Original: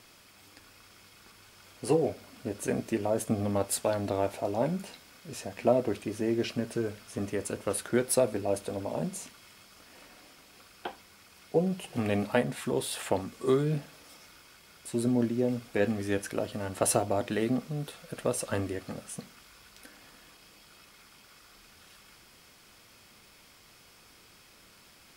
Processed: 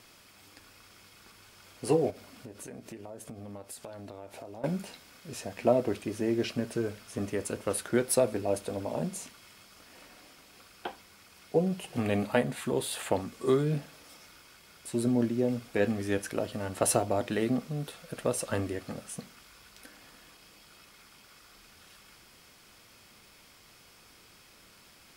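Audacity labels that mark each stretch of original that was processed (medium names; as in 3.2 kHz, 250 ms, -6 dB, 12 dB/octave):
2.100000	4.640000	compression, threshold -41 dBFS
12.010000	13.120000	band-stop 5.4 kHz, Q 10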